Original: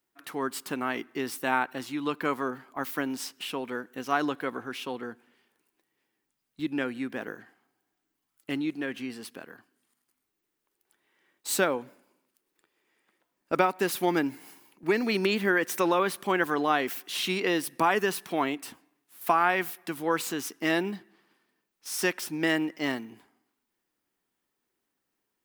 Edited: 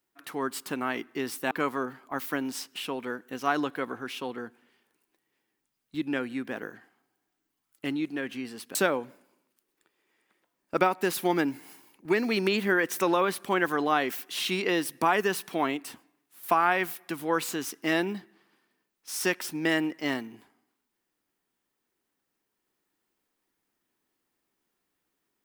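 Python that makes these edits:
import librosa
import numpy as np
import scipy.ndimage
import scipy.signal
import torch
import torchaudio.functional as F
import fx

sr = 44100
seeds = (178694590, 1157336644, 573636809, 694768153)

y = fx.edit(x, sr, fx.cut(start_s=1.51, length_s=0.65),
    fx.cut(start_s=9.4, length_s=2.13), tone=tone)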